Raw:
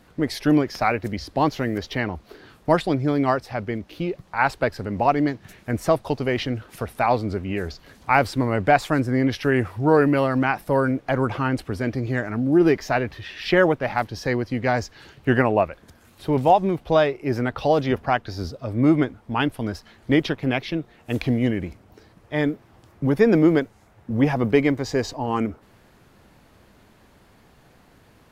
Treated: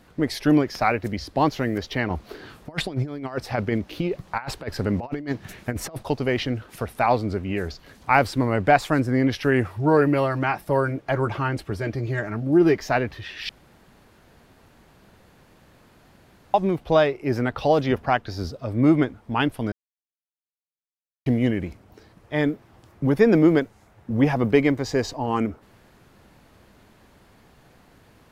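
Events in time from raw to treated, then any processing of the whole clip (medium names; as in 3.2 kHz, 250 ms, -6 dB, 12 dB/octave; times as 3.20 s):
2.10–6.03 s: compressor with a negative ratio -26 dBFS, ratio -0.5
9.67–12.79 s: comb of notches 250 Hz
13.49–16.54 s: room tone
19.72–21.26 s: mute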